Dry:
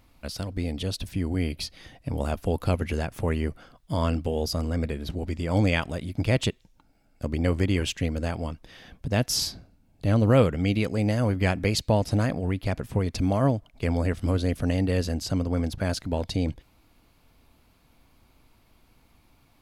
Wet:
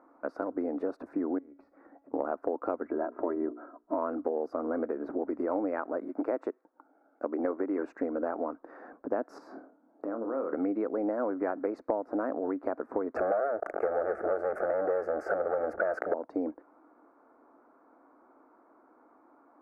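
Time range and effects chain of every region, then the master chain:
0:01.38–0:02.14: bass and treble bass +8 dB, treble −12 dB + downward compressor 12 to 1, threshold −34 dBFS + tuned comb filter 280 Hz, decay 0.37 s, mix 70%
0:02.87–0:03.98: head-to-tape spacing loss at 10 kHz 34 dB + mains-hum notches 60/120/180/240/300/360/420/480 Hz + comb filter 3.1 ms, depth 62%
0:06.04–0:07.79: high-pass filter 46 Hz + parametric band 83 Hz −9.5 dB 2.4 octaves
0:09.38–0:10.53: high-pass filter 92 Hz 24 dB per octave + downward compressor 8 to 1, threshold −32 dBFS + flutter between parallel walls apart 4.5 metres, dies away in 0.21 s
0:13.16–0:16.14: leveller curve on the samples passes 5 + phaser with its sweep stopped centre 1,000 Hz, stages 6 + level that may fall only so fast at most 64 dB per second
whole clip: elliptic band-pass filter 290–1,400 Hz, stop band 40 dB; downward compressor 6 to 1, threshold −35 dBFS; level +7.5 dB

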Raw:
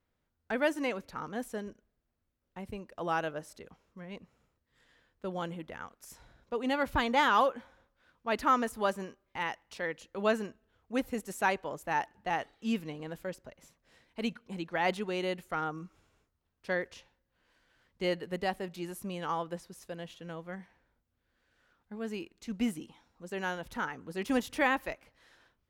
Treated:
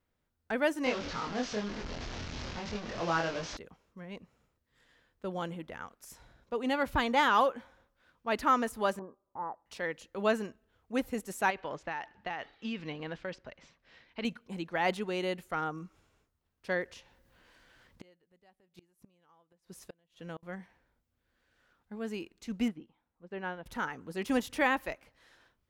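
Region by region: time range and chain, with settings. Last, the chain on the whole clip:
0:00.84–0:03.57: linear delta modulator 32 kbit/s, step −35.5 dBFS + double-tracking delay 24 ms −2 dB
0:08.99–0:09.66: Butterworth low-pass 1,200 Hz 48 dB per octave + spectral tilt +2.5 dB per octave
0:11.50–0:14.25: low-pass filter 5,500 Hz 24 dB per octave + parametric band 2,300 Hz +6.5 dB 2.4 octaves + downward compressor 10 to 1, threshold −32 dBFS
0:16.88–0:20.43: upward compression, threshold −52 dBFS + gate with flip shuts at −33 dBFS, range −32 dB
0:22.68–0:23.66: high-frequency loss of the air 340 metres + expander for the loud parts, over −57 dBFS
whole clip: no processing

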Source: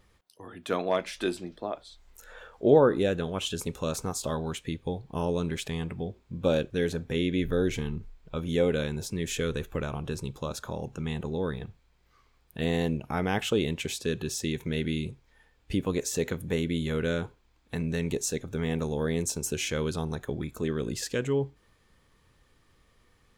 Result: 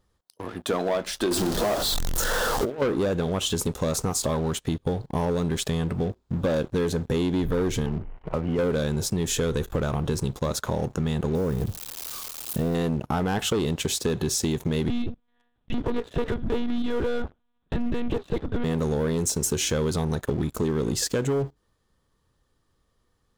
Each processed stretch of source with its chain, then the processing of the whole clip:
0:01.31–0:02.82: converter with a step at zero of −33.5 dBFS + mains-hum notches 60/120/180/240/300/360/420 Hz + compressor whose output falls as the input rises −27 dBFS, ratio −0.5
0:07.86–0:08.59: mu-law and A-law mismatch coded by mu + Chebyshev low-pass with heavy ripple 3,000 Hz, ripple 6 dB + multiband upward and downward compressor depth 70%
0:11.35–0:12.75: spike at every zero crossing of −26 dBFS + tilt shelving filter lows +9 dB, about 1,400 Hz + downward compressor 1.5 to 1, threshold −38 dBFS
0:14.88–0:18.64: hard clipping −24 dBFS + one-pitch LPC vocoder at 8 kHz 240 Hz
whole clip: parametric band 2,300 Hz −10.5 dB 0.64 octaves; leveller curve on the samples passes 3; downward compressor, threshold −22 dBFS

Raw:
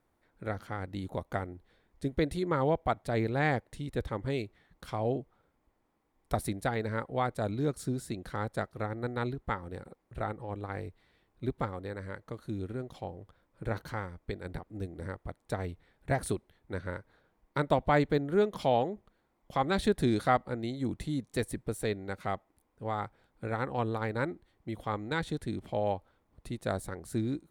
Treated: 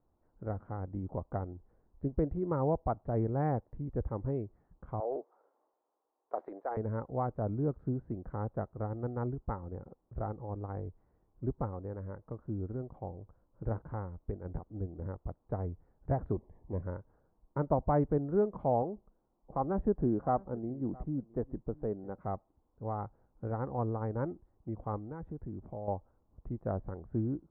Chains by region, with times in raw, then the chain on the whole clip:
0:05.00–0:06.77: high-pass filter 420 Hz 24 dB per octave + transient designer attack −1 dB, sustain +8 dB
0:16.33–0:16.83: mu-law and A-law mismatch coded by mu + Butterworth band-reject 1,400 Hz, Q 2.3
0:18.82–0:22.19: low-pass filter 1,500 Hz + parametric band 88 Hz −11.5 dB 0.67 octaves + single-tap delay 665 ms −23 dB
0:24.98–0:25.88: downward compressor 2 to 1, threshold −40 dBFS + high-frequency loss of the air 250 metres
whole clip: low-pass filter 1,100 Hz 24 dB per octave; low-shelf EQ 110 Hz +8 dB; level −3 dB

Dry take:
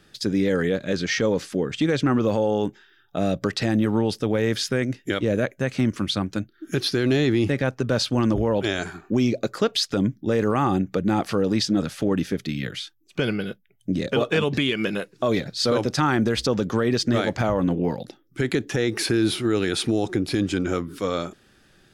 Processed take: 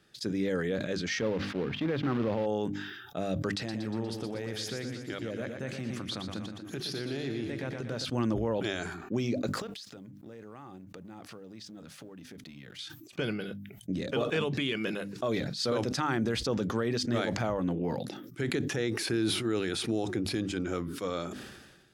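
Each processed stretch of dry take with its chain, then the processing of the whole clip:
0:01.21–0:02.46: high-pass filter 44 Hz 24 dB per octave + log-companded quantiser 4 bits + high-frequency loss of the air 330 metres
0:03.51–0:08.05: downward compressor 4 to 1, threshold −24 dBFS + feedback echo with a swinging delay time 119 ms, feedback 57%, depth 58 cents, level −7 dB
0:09.47–0:12.79: mu-law and A-law mismatch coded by A + downward compressor 8 to 1, threshold −35 dBFS
whole clip: high-pass filter 53 Hz; mains-hum notches 50/100/150/200/250/300 Hz; level that may fall only so fast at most 44 dB per second; level −8.5 dB

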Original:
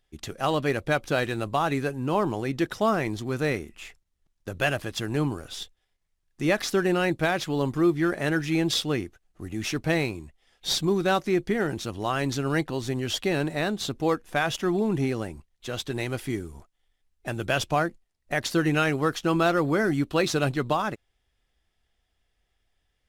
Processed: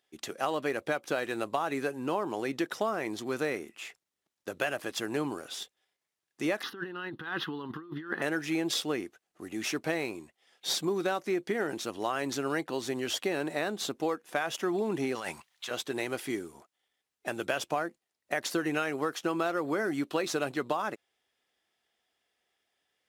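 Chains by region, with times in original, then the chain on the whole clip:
0:06.63–0:08.22: high shelf with overshoot 3,900 Hz −12 dB, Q 1.5 + phaser with its sweep stopped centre 2,300 Hz, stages 6 + compressor whose output falls as the input rises −32 dBFS, ratio −0.5
0:15.15–0:15.71: drawn EQ curve 200 Hz 0 dB, 300 Hz −9 dB, 940 Hz +9 dB, 3,600 Hz +11 dB, 8,700 Hz +7 dB + compressor whose output falls as the input rises −35 dBFS
whole clip: high-pass filter 300 Hz 12 dB per octave; dynamic equaliser 3,800 Hz, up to −4 dB, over −40 dBFS, Q 1.1; downward compressor, threshold −26 dBFS

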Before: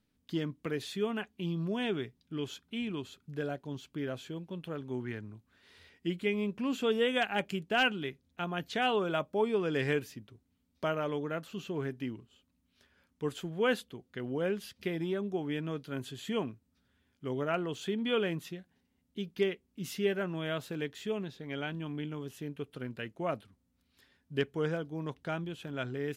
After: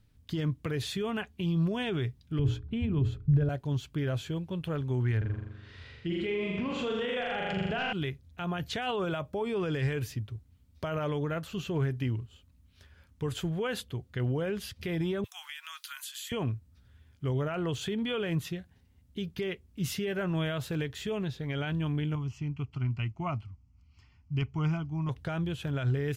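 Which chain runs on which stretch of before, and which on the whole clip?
0:02.39–0:03.49: spectral tilt −4 dB per octave + mains-hum notches 60/120/180/240/300/360/420 Hz
0:05.17–0:07.93: high-frequency loss of the air 120 metres + flutter between parallel walls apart 7.1 metres, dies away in 1.1 s
0:15.24–0:16.32: Butterworth high-pass 1,000 Hz + spectral tilt +4.5 dB per octave + downward compressor 10 to 1, threshold −43 dBFS
0:22.15–0:25.09: high-frequency loss of the air 72 metres + phaser with its sweep stopped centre 2,500 Hz, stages 8
whole clip: brickwall limiter −29 dBFS; low shelf with overshoot 150 Hz +12 dB, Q 1.5; level +5.5 dB

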